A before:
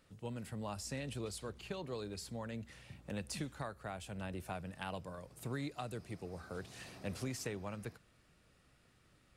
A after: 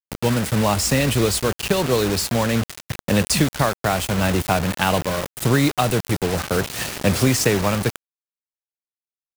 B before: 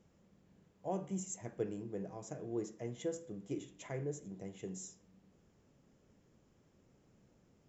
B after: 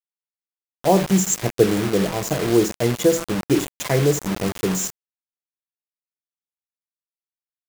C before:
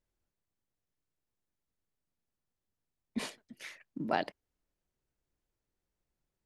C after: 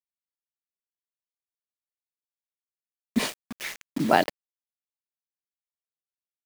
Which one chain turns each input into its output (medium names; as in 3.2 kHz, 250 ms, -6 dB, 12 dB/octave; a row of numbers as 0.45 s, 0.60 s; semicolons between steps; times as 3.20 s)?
bit crusher 8-bit; peak normalisation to -2 dBFS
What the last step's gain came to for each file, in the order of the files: +23.0 dB, +22.0 dB, +11.5 dB